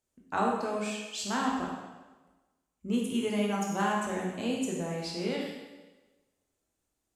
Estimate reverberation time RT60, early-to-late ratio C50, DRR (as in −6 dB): 1.2 s, 1.5 dB, −2.5 dB